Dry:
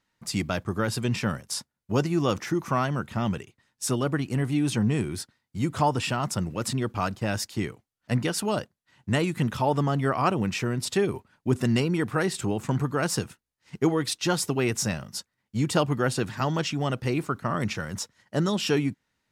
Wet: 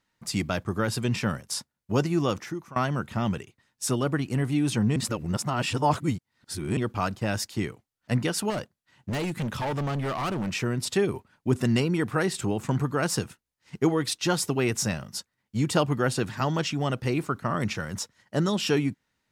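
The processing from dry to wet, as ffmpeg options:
ffmpeg -i in.wav -filter_complex "[0:a]asettb=1/sr,asplit=3[link_01][link_02][link_03];[link_01]atrim=end=8.504[link_04];[link_02]atrim=start=8.5:end=10.52,asetpts=PTS-STARTPTS,afade=type=in:duration=0.004:curve=qsin,afade=type=out:start_time=2.016:duration=0.004:curve=qsin,asoftclip=type=hard:threshold=-26dB[link_05];[link_03]atrim=start=10.516[link_06];[link_04][link_05]acrossfade=duration=0.004:curve1=hsin:curve2=qsin[link_07];[link_07][link_06]acrossfade=duration=0.004:curve1=qsin:curve2=hsin,asplit=4[link_08][link_09][link_10][link_11];[link_08]atrim=end=2.76,asetpts=PTS-STARTPTS,afade=type=out:start_time=2.19:duration=0.57:silence=0.0841395[link_12];[link_09]atrim=start=2.76:end=4.962,asetpts=PTS-STARTPTS,afade=type=in:duration=0.004:curve=hsin:silence=0.0841395[link_13];[link_10]atrim=start=4.958:end=6.772,asetpts=PTS-STARTPTS,areverse[link_14];[link_11]atrim=start=6.768[link_15];[link_12][link_13]concat=n=2:v=0:a=1[link_16];[link_16][link_14]acrossfade=duration=0.004:curve1=hsin:curve2=hsin[link_17];[link_17][link_15]acrossfade=duration=0.004:curve1=hsin:curve2=hsin" out.wav

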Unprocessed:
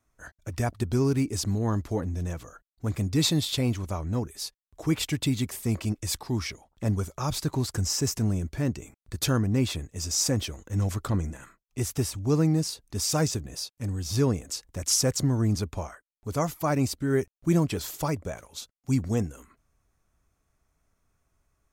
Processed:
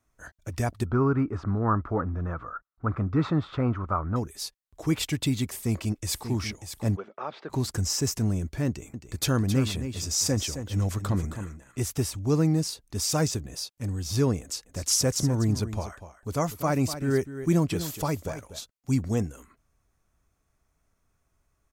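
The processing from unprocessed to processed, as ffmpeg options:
ffmpeg -i in.wav -filter_complex "[0:a]asettb=1/sr,asplit=3[link_01][link_02][link_03];[link_01]atrim=end=0.864[link_04];[link_02]atrim=start=0.86:end=4.16,asetpts=PTS-STARTPTS,afade=type=in:duration=0.004:curve=qsin,afade=type=out:start_time=3.296:duration=0.004:curve=qsin,lowpass=frequency=1300:width_type=q:width=6.9[link_05];[link_03]atrim=start=4.156[link_06];[link_04][link_05]acrossfade=duration=0.004:curve1=hsin:curve2=qsin[link_07];[link_07][link_06]acrossfade=duration=0.004:curve1=qsin:curve2=hsin,asplit=2[link_08][link_09];[link_09]afade=type=in:start_time=5.49:duration=0.01,afade=type=out:start_time=6.28:duration=0.01,aecho=0:1:590|1180|1770:0.334965|0.10049|0.0301469[link_10];[link_08][link_10]amix=inputs=2:normalize=0,asplit=3[link_11][link_12][link_13];[link_11]afade=type=out:start_time=6.95:duration=0.02[link_14];[link_12]highpass=frequency=270:width=0.5412,highpass=frequency=270:width=1.3066,equalizer=frequency=290:width_type=q:width=4:gain=-10,equalizer=frequency=1000:width_type=q:width=4:gain=-4,equalizer=frequency=2400:width_type=q:width=4:gain=-4,lowpass=frequency=2700:width=0.5412,lowpass=frequency=2700:width=1.3066,afade=type=in:start_time=6.95:duration=0.02,afade=type=out:start_time=7.49:duration=0.02[link_15];[link_13]afade=type=in:start_time=7.49:duration=0.02[link_16];[link_14][link_15][link_16]amix=inputs=3:normalize=0,asettb=1/sr,asplit=3[link_17][link_18][link_19];[link_17]atrim=end=8.674[link_20];[link_18]atrim=start=8.67:end=11.95,asetpts=PTS-STARTPTS,afade=type=in:duration=0.004:curve=qsin,afade=type=out:start_time=3.276:duration=0.004:curve=qsin,aecho=1:1:267:0.335,atrim=end_sample=144648[link_21];[link_19]atrim=start=11.946[link_22];[link_20][link_21]acrossfade=duration=0.004:curve1=hsin:curve2=qsin[link_23];[link_23][link_22]acrossfade=duration=0.004:curve1=qsin:curve2=hsin,asplit=3[link_24][link_25][link_26];[link_24]afade=type=out:start_time=14.65:duration=0.02[link_27];[link_25]aecho=1:1:245:0.251,afade=type=in:start_time=14.65:duration=0.02,afade=type=out:start_time=18.59:duration=0.02[link_28];[link_26]afade=type=in:start_time=18.59:duration=0.02[link_29];[link_27][link_28][link_29]amix=inputs=3:normalize=0" out.wav

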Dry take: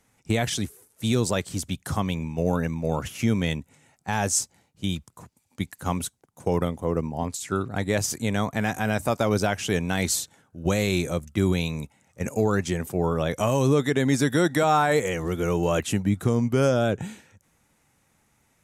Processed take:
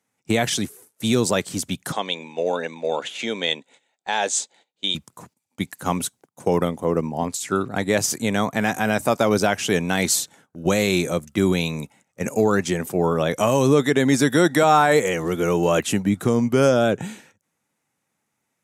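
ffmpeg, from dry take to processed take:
ffmpeg -i in.wav -filter_complex "[0:a]asettb=1/sr,asplit=3[link_01][link_02][link_03];[link_01]atrim=end=1.924[link_04];[link_02]atrim=start=1.92:end=4.95,asetpts=PTS-STARTPTS,afade=type=in:duration=0.004:curve=qsin,afade=type=out:start_time=3.026:duration=0.004:curve=qsin,highpass=450,equalizer=frequency=490:width_type=q:width=4:gain=3,equalizer=frequency=1200:width_type=q:width=4:gain=-7,equalizer=frequency=3600:width_type=q:width=4:gain=10,equalizer=frequency=5500:width_type=q:width=4:gain=-9,lowpass=frequency=7500:width=0.5412,lowpass=frequency=7500:width=1.3066[link_05];[link_03]atrim=start=4.946[link_06];[link_04][link_05]acrossfade=duration=0.004:curve1=hsin:curve2=qsin[link_07];[link_07][link_06]acrossfade=duration=0.004:curve1=qsin:curve2=hsin,highpass=160,agate=range=-14dB:threshold=-55dB:ratio=16:detection=peak,volume=5dB" out.wav

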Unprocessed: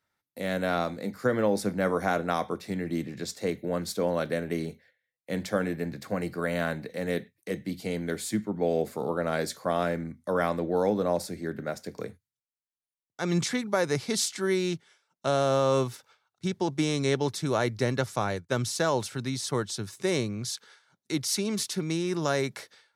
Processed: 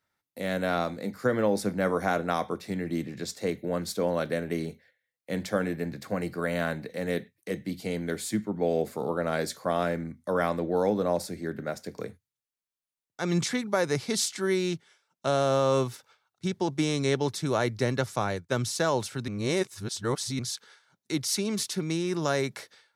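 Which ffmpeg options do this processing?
ffmpeg -i in.wav -filter_complex "[0:a]asplit=3[link_01][link_02][link_03];[link_01]atrim=end=19.282[link_04];[link_02]atrim=start=19.278:end=20.392,asetpts=PTS-STARTPTS,areverse[link_05];[link_03]atrim=start=20.388[link_06];[link_04][link_05]acrossfade=duration=0.004:curve1=hsin:curve2=hsin[link_07];[link_07][link_06]acrossfade=duration=0.004:curve1=hsin:curve2=hsin" out.wav

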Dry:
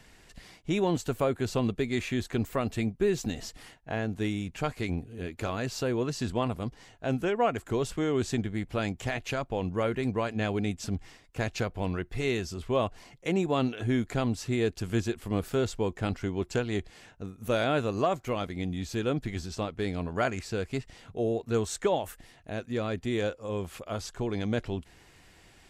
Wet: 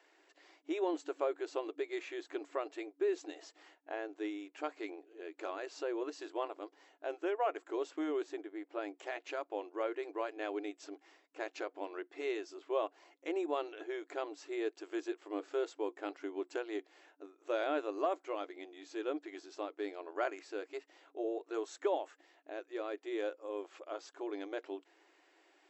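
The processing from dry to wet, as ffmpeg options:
ffmpeg -i in.wav -filter_complex "[0:a]asettb=1/sr,asplit=3[link_01][link_02][link_03];[link_01]atrim=end=8.234[link_04];[link_02]atrim=start=8.23:end=8.95,asetpts=PTS-STARTPTS,afade=type=in:duration=0.004:curve=qsin,afade=type=out:start_time=0.716:duration=0.004:curve=qsin,highshelf=frequency=2300:gain=-7.5[link_05];[link_03]atrim=start=8.946[link_06];[link_04][link_05]acrossfade=duration=0.004:curve1=hsin:curve2=qsin[link_07];[link_07][link_06]acrossfade=duration=0.004:curve1=qsin:curve2=hsin,highshelf=frequency=2600:gain=-10.5,bandreject=frequency=470:width=12,afftfilt=real='re*between(b*sr/4096,290,7900)':imag='im*between(b*sr/4096,290,7900)':win_size=4096:overlap=0.75,volume=-5.5dB" out.wav

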